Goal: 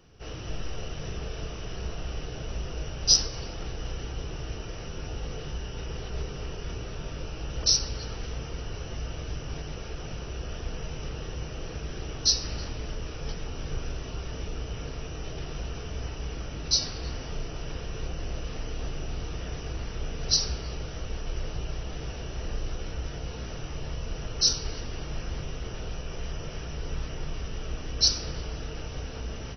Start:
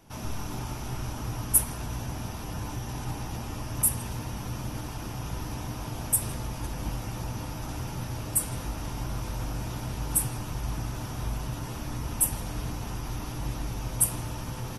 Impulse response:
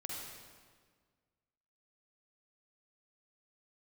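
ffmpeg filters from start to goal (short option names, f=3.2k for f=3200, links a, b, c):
-af "asetrate=22050,aresample=44100"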